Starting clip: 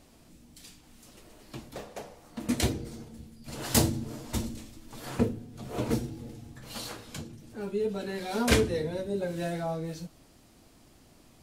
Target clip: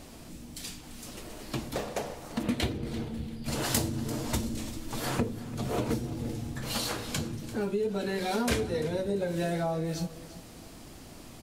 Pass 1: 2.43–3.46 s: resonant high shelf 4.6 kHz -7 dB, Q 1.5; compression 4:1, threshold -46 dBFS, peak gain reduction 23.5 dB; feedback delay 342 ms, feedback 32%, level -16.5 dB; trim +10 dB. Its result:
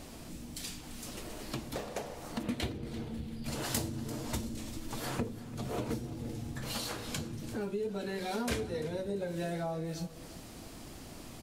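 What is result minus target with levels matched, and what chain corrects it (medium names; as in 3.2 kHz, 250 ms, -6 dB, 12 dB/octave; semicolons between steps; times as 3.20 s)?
compression: peak gain reduction +5.5 dB
2.43–3.46 s: resonant high shelf 4.6 kHz -7 dB, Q 1.5; compression 4:1, threshold -38.5 dBFS, peak gain reduction 17.5 dB; feedback delay 342 ms, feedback 32%, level -16.5 dB; trim +10 dB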